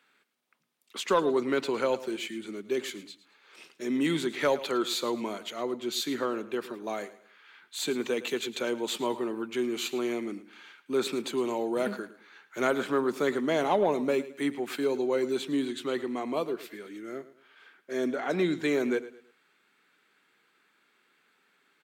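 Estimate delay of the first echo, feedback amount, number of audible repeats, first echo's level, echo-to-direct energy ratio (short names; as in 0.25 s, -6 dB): 0.109 s, 33%, 2, -16.0 dB, -15.5 dB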